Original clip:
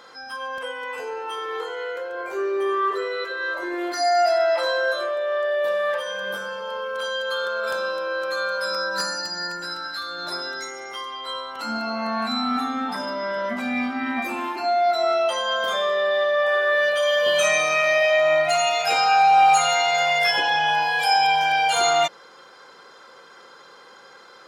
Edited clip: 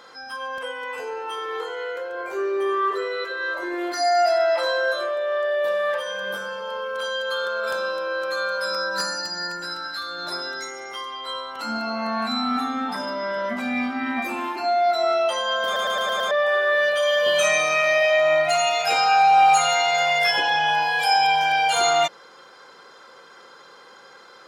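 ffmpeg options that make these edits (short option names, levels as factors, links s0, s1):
-filter_complex "[0:a]asplit=7[s0][s1][s2][s3][s4][s5][s6];[s0]atrim=end=15.762[s7];[s1]atrim=start=15.648:end=15.762[s8];[s2]atrim=start=15.648:end=15.762[s9];[s3]atrim=start=15.648:end=15.762[s10];[s4]atrim=start=15.648:end=15.762[s11];[s5]atrim=start=15.648:end=15.762[s12];[s6]atrim=start=16.308[s13];[s7][s8]acrossfade=d=0.004:c1=hsin:c2=hsin[s14];[s14][s9]acrossfade=d=0.004:c1=hsin:c2=hsin[s15];[s15][s10]acrossfade=d=0.004:c1=hsin:c2=hsin[s16];[s16][s11]acrossfade=d=0.004:c1=hsin:c2=hsin[s17];[s17][s12]acrossfade=d=0.004:c1=hsin:c2=hsin[s18];[s18][s13]acrossfade=d=0.004:c1=hsin:c2=hsin"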